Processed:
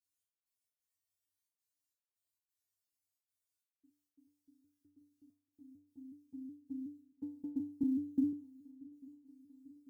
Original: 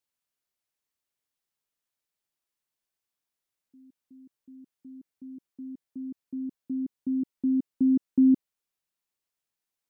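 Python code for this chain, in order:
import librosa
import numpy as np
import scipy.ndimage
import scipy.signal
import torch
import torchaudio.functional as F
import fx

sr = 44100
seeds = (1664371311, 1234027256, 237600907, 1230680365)

y = fx.bass_treble(x, sr, bass_db=8, treble_db=11)
y = fx.step_gate(y, sr, bpm=133, pattern='xx..xx.xxxxxx.x', floor_db=-60.0, edge_ms=4.5)
y = fx.env_flanger(y, sr, rest_ms=2.8, full_db=-23.5)
y = fx.comb_fb(y, sr, f0_hz=97.0, decay_s=0.46, harmonics='odd', damping=0.0, mix_pct=100)
y = fx.quant_float(y, sr, bits=6)
y = fx.echo_swing(y, sr, ms=844, ratio=3, feedback_pct=63, wet_db=-23)
y = fx.band_squash(y, sr, depth_pct=40, at=(7.83, 8.33))
y = F.gain(torch.from_numpy(y), 5.5).numpy()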